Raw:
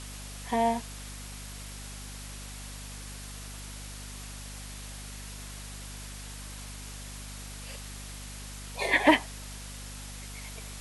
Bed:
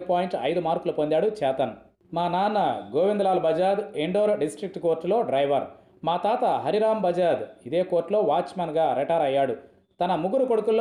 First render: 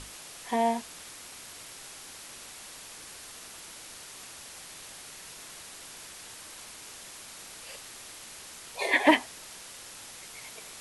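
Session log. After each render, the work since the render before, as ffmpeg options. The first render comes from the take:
-af "bandreject=f=50:t=h:w=6,bandreject=f=100:t=h:w=6,bandreject=f=150:t=h:w=6,bandreject=f=200:t=h:w=6,bandreject=f=250:t=h:w=6"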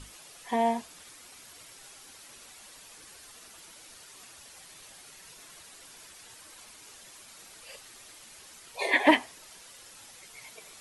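-af "afftdn=nr=8:nf=-47"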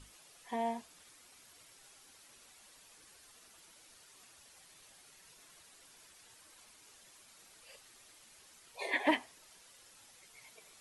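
-af "volume=-9.5dB"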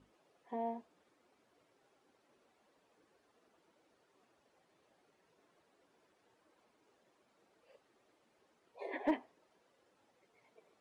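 -af "bandpass=f=390:t=q:w=0.95:csg=0,volume=24.5dB,asoftclip=hard,volume=-24.5dB"

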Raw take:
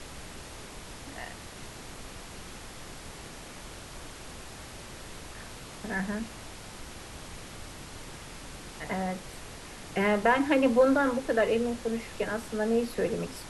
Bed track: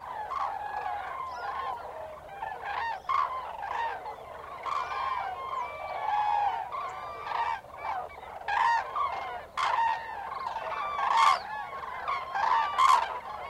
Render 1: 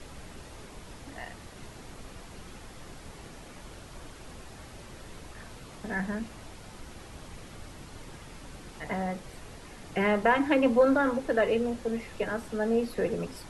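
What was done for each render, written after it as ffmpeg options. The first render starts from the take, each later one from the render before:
-af "afftdn=nr=6:nf=-45"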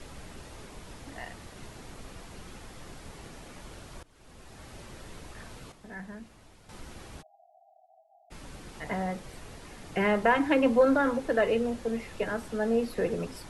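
-filter_complex "[0:a]asplit=3[a][b][c];[a]afade=t=out:st=7.21:d=0.02[d];[b]asuperpass=centerf=710:order=20:qfactor=3.8,afade=t=in:st=7.21:d=0.02,afade=t=out:st=8.3:d=0.02[e];[c]afade=t=in:st=8.3:d=0.02[f];[d][e][f]amix=inputs=3:normalize=0,asplit=4[g][h][i][j];[g]atrim=end=4.03,asetpts=PTS-STARTPTS,afade=t=out:st=4.026:d=0.004:c=hsin:silence=0.0749894[k];[h]atrim=start=4.03:end=5.722,asetpts=PTS-STARTPTS,afade=t=in:d=0.72:silence=0.0749894[l];[i]atrim=start=5.718:end=6.692,asetpts=PTS-STARTPTS,volume=-10dB[m];[j]atrim=start=6.688[n];[k][l]concat=n=2:v=0:a=1[o];[o][m]acrossfade=d=0.004:c1=hsin:c2=hsin[p];[p][n]acrossfade=d=0.004:c1=hsin:c2=hsin"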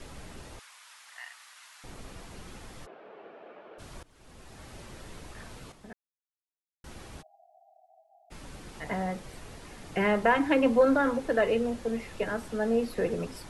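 -filter_complex "[0:a]asettb=1/sr,asplit=3[a][b][c];[a]atrim=end=0.594[d];[b]atrim=start=0.59:end=1.84,asetpts=PTS-STARTPTS,afade=t=in:d=0.004:c=qsin,afade=t=out:st=1.246:d=0.004:c=qsin,highpass=f=1.1k:w=0.5412,highpass=f=1.1k:w=1.3066[e];[c]atrim=start=1.836[f];[d][e]acrossfade=d=0.004:c1=hsin:c2=qsin[g];[g][f]acrossfade=d=0.004:c1=qsin:c2=hsin,asplit=3[h][i][j];[h]afade=t=out:st=2.85:d=0.02[k];[i]highpass=f=270:w=0.5412,highpass=f=270:w=1.3066,equalizer=f=270:t=q:w=4:g=-8,equalizer=f=440:t=q:w=4:g=5,equalizer=f=640:t=q:w=4:g=6,equalizer=f=970:t=q:w=4:g=-3,equalizer=f=2k:t=q:w=4:g=-8,lowpass=f=2.4k:w=0.5412,lowpass=f=2.4k:w=1.3066,afade=t=in:st=2.85:d=0.02,afade=t=out:st=3.78:d=0.02[l];[j]afade=t=in:st=3.78:d=0.02[m];[k][l][m]amix=inputs=3:normalize=0,asplit=3[n][o][p];[n]atrim=end=5.93,asetpts=PTS-STARTPTS,afade=t=out:st=5.926:d=0.004:c=hsin[q];[o]atrim=start=5.93:end=6.84,asetpts=PTS-STARTPTS,volume=0[r];[p]atrim=start=6.84,asetpts=PTS-STARTPTS,afade=t=in:d=0.004:c=hsin[s];[q][r][s]concat=n=3:v=0:a=1"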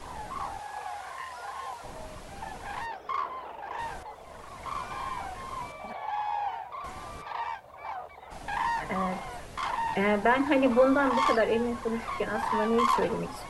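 -filter_complex "[1:a]volume=-4dB[a];[0:a][a]amix=inputs=2:normalize=0"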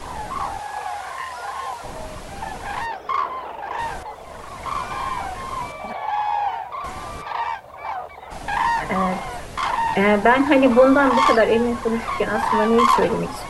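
-af "volume=9dB,alimiter=limit=-3dB:level=0:latency=1"

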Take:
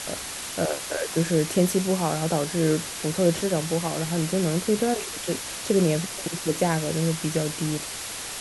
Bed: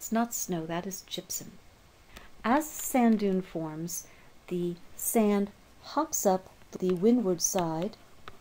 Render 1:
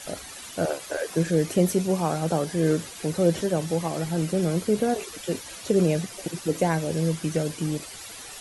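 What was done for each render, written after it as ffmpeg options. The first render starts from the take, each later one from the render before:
-af "afftdn=nr=11:nf=-35"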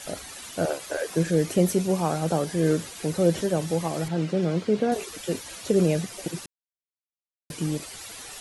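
-filter_complex "[0:a]asettb=1/sr,asplit=3[a][b][c];[a]atrim=end=4.084[d];[b]atrim=start=4.08:end=4.92,asetpts=PTS-STARTPTS,afade=t=in:d=0.004:c=qsin,afade=t=out:st=0.836:d=0.004:c=qsin,highpass=110,lowpass=4.4k[e];[c]atrim=start=4.916[f];[d][e]acrossfade=d=0.004:c1=hsin:c2=qsin[g];[g][f]acrossfade=d=0.004:c1=qsin:c2=hsin,asplit=3[h][i][j];[h]atrim=end=6.46,asetpts=PTS-STARTPTS,afade=t=out:st=6.456:d=0.004:c=hsin[k];[i]atrim=start=6.46:end=7.5,asetpts=PTS-STARTPTS,volume=0[l];[j]atrim=start=7.5,asetpts=PTS-STARTPTS,afade=t=in:d=0.004:c=hsin[m];[k][l][m]concat=n=3:v=0:a=1"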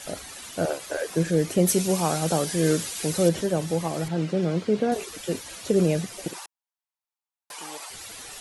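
-filter_complex "[0:a]asettb=1/sr,asplit=3[a][b][c];[a]atrim=end=1.674[d];[b]atrim=start=1.67:end=3.29,asetpts=PTS-STARTPTS,afade=t=in:d=0.004:c=qsin,afade=t=out:st=1.616:d=0.004:c=qsin,highshelf=f=2.4k:g=9[e];[c]atrim=start=3.286[f];[d][e]acrossfade=d=0.004:c1=hsin:c2=qsin[g];[g][f]acrossfade=d=0.004:c1=qsin:c2=hsin,asettb=1/sr,asplit=3[h][i][j];[h]atrim=end=6.334[k];[i]atrim=start=6.33:end=7.9,asetpts=PTS-STARTPTS,afade=t=in:d=0.004:c=qsin,afade=t=out:st=1.566:d=0.004:c=qsin,highpass=f=870:t=q:w=3.2[l];[j]atrim=start=7.896[m];[k][l]acrossfade=d=0.004:c1=hsin:c2=qsin[n];[n][m]acrossfade=d=0.004:c1=qsin:c2=hsin"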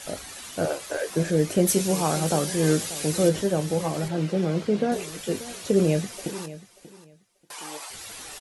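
-filter_complex "[0:a]asplit=2[a][b];[b]adelay=20,volume=-10.5dB[c];[a][c]amix=inputs=2:normalize=0,aecho=1:1:586|1172:0.158|0.0301"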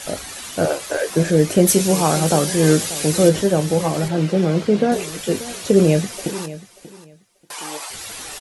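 -af "volume=7dB,alimiter=limit=-2dB:level=0:latency=1"

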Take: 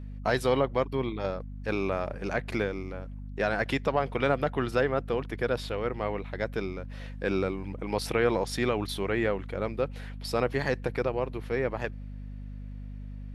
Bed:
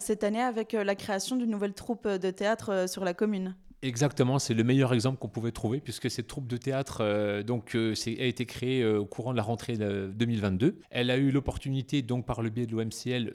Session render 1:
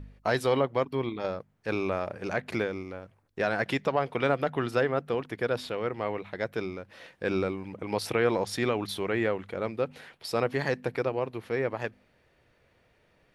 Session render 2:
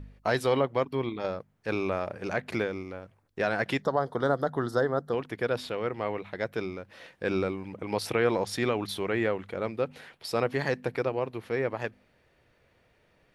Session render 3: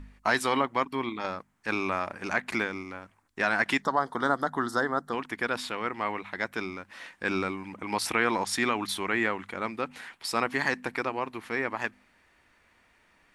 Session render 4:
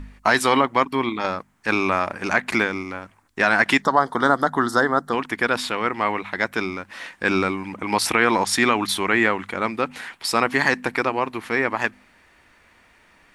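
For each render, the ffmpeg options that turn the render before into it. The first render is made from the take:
-af "bandreject=f=50:t=h:w=4,bandreject=f=100:t=h:w=4,bandreject=f=150:t=h:w=4,bandreject=f=200:t=h:w=4,bandreject=f=250:t=h:w=4"
-filter_complex "[0:a]asplit=3[a][b][c];[a]afade=t=out:st=3.81:d=0.02[d];[b]asuperstop=centerf=2500:order=4:qfactor=1.3,afade=t=in:st=3.81:d=0.02,afade=t=out:st=5.12:d=0.02[e];[c]afade=t=in:st=5.12:d=0.02[f];[d][e][f]amix=inputs=3:normalize=0"
-af "equalizer=f=125:t=o:w=1:g=-10,equalizer=f=250:t=o:w=1:g=5,equalizer=f=500:t=o:w=1:g=-9,equalizer=f=1k:t=o:w=1:g=7,equalizer=f=2k:t=o:w=1:g=5,equalizer=f=8k:t=o:w=1:g=9"
-af "volume=8.5dB,alimiter=limit=-3dB:level=0:latency=1"

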